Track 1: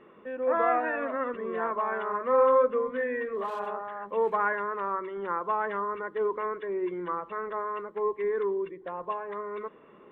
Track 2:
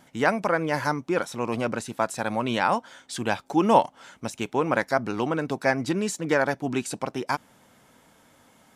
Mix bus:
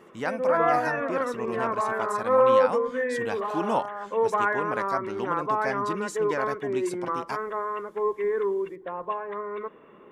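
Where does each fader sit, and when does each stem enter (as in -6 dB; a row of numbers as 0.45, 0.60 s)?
+2.5, -8.0 dB; 0.00, 0.00 s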